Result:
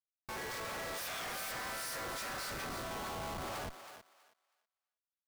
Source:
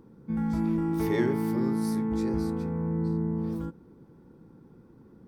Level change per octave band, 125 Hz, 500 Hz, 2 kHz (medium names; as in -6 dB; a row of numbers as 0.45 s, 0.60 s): -20.5 dB, -12.0 dB, +3.0 dB